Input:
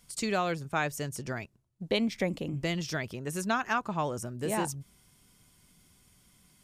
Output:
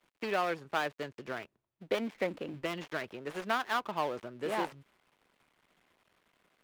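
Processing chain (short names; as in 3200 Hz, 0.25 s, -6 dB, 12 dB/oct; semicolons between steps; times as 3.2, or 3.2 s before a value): switching dead time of 0.17 ms; three-band isolator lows -16 dB, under 290 Hz, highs -13 dB, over 3600 Hz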